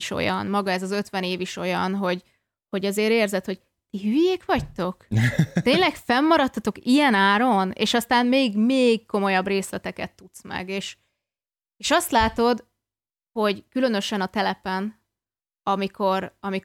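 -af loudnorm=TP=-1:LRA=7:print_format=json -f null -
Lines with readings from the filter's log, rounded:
"input_i" : "-23.0",
"input_tp" : "-8.0",
"input_lra" : "6.1",
"input_thresh" : "-33.4",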